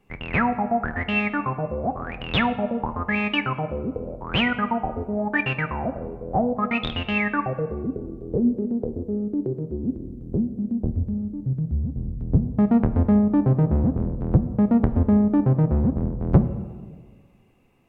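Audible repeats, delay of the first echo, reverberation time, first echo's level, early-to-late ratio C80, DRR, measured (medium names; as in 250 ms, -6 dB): no echo, no echo, 1.6 s, no echo, 13.5 dB, 9.5 dB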